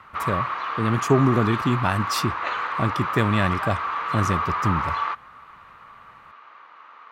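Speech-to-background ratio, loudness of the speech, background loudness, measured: 2.0 dB, −24.5 LKFS, −26.5 LKFS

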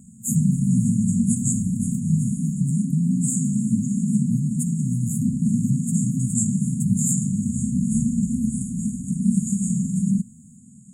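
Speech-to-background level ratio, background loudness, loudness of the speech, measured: −4.5 dB, −23.5 LKFS, −28.0 LKFS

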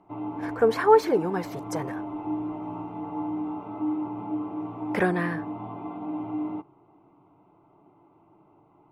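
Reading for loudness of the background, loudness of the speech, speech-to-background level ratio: −33.5 LKFS, −24.5 LKFS, 9.0 dB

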